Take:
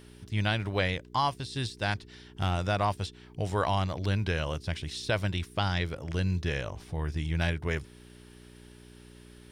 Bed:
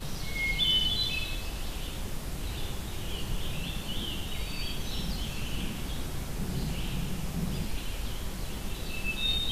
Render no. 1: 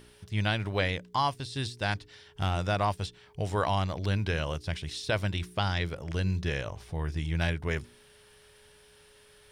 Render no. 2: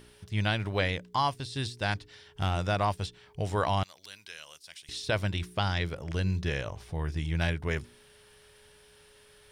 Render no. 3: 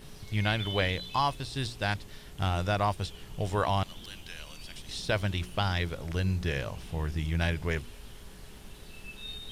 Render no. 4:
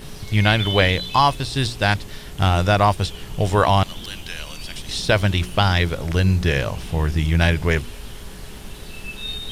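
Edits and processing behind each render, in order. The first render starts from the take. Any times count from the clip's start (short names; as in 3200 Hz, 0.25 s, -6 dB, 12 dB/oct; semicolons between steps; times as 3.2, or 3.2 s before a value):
de-hum 60 Hz, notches 6
3.83–4.89 differentiator
add bed -12.5 dB
gain +11.5 dB; limiter -2 dBFS, peak gain reduction 1 dB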